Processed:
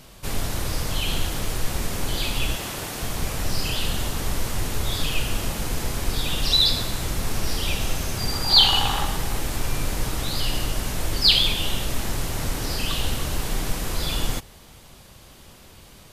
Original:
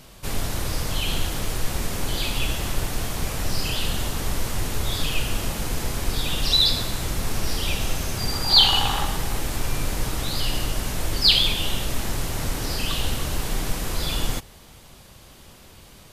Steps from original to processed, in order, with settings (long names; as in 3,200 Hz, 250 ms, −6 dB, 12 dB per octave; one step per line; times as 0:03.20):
0:02.56–0:03.03: high-pass filter 220 Hz 6 dB per octave